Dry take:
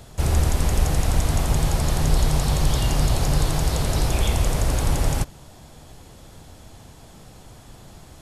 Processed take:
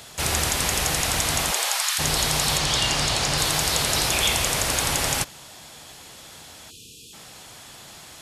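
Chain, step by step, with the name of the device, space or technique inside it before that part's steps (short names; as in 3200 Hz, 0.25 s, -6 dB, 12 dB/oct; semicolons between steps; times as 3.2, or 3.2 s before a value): filter by subtraction (in parallel: LPF 2600 Hz 12 dB/oct + phase invert); 1.5–1.98 on the sum: HPF 340 Hz -> 1300 Hz 24 dB/oct; 2.58–3.38 LPF 8300 Hz 12 dB/oct; 6.71–7.14 spectral delete 510–2400 Hz; low shelf 280 Hz +9.5 dB; gain +8 dB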